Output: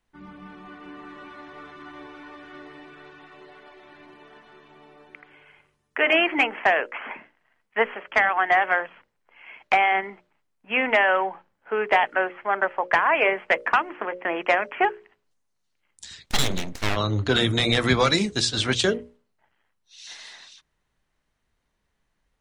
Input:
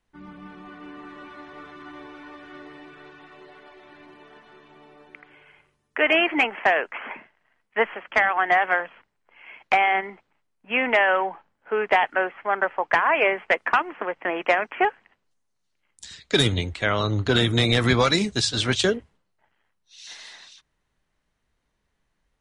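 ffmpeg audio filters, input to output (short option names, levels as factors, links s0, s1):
-filter_complex "[0:a]bandreject=f=60:t=h:w=6,bandreject=f=120:t=h:w=6,bandreject=f=180:t=h:w=6,bandreject=f=240:t=h:w=6,bandreject=f=300:t=h:w=6,bandreject=f=360:t=h:w=6,bandreject=f=420:t=h:w=6,bandreject=f=480:t=h:w=6,bandreject=f=540:t=h:w=6,bandreject=f=600:t=h:w=6,asplit=3[s0][s1][s2];[s0]afade=t=out:st=16.25:d=0.02[s3];[s1]aeval=exprs='abs(val(0))':c=same,afade=t=in:st=16.25:d=0.02,afade=t=out:st=16.95:d=0.02[s4];[s2]afade=t=in:st=16.95:d=0.02[s5];[s3][s4][s5]amix=inputs=3:normalize=0"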